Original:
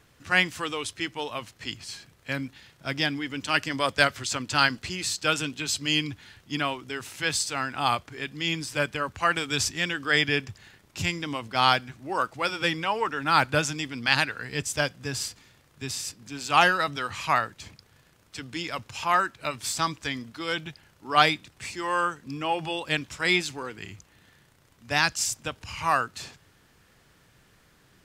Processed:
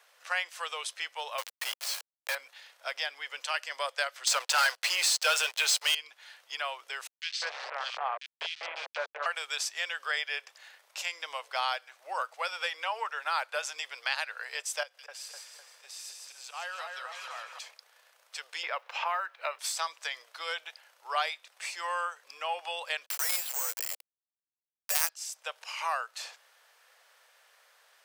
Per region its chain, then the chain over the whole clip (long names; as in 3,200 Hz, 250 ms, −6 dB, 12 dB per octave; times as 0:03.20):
0:01.38–0:02.35: high-pass filter 320 Hz + log-companded quantiser 2 bits
0:04.27–0:05.95: high-pass filter 340 Hz 24 dB per octave + leveller curve on the samples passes 5
0:07.07–0:09.26: hold until the input has moved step −24.5 dBFS + low-pass filter 5,100 Hz 24 dB per octave + multiband delay without the direct sound highs, lows 200 ms, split 2,300 Hz
0:14.83–0:17.59: volume swells 171 ms + downward compressor 2 to 1, threshold −48 dBFS + echo with a time of its own for lows and highs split 2,200 Hz, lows 252 ms, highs 158 ms, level −3.5 dB
0:18.63–0:19.59: low-pass filter 3,000 Hz + log-companded quantiser 8 bits + multiband upward and downward compressor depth 70%
0:23.06–0:25.09: log-companded quantiser 2 bits + bad sample-rate conversion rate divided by 6×, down filtered, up zero stuff
whole clip: downward compressor 2.5 to 1, threshold −31 dBFS; Butterworth high-pass 520 Hz 48 dB per octave; notch filter 7,100 Hz, Q 23